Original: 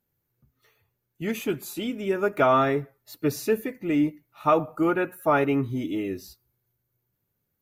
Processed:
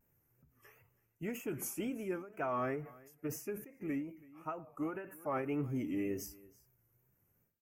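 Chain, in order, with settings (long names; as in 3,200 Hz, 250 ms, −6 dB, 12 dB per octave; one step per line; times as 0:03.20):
tape wow and flutter 120 cents
reversed playback
downward compressor 12 to 1, threshold −36 dBFS, peak gain reduction 20.5 dB
reversed playback
Butterworth band-reject 3,900 Hz, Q 1.4
on a send: single-tap delay 328 ms −22.5 dB
on the sum: every ending faded ahead of time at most 110 dB per second
level +3 dB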